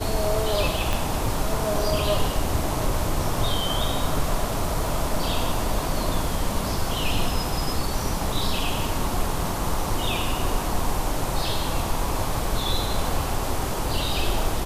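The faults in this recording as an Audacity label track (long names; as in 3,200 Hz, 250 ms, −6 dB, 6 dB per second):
0.930000	0.930000	click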